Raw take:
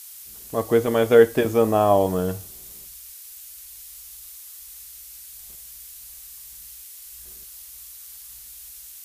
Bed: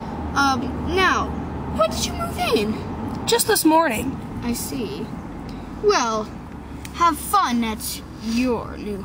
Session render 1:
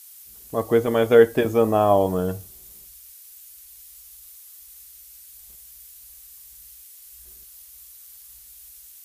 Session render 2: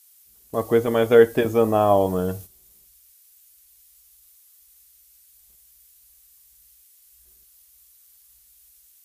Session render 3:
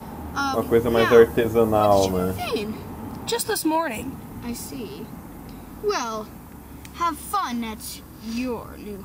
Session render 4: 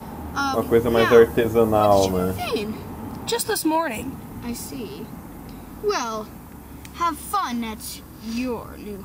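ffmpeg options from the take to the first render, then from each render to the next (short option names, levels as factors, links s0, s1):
-af "afftdn=nr=6:nf=-42"
-af "agate=range=0.355:threshold=0.0126:ratio=16:detection=peak"
-filter_complex "[1:a]volume=0.473[s0];[0:a][s0]amix=inputs=2:normalize=0"
-af "volume=1.12,alimiter=limit=0.794:level=0:latency=1"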